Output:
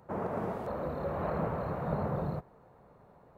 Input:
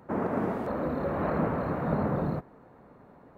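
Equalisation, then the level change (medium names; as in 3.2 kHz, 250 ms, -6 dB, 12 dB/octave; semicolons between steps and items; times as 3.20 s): peaking EQ 270 Hz -10.5 dB 0.81 oct; peaking EQ 1.8 kHz -5.5 dB 1.3 oct; -1.5 dB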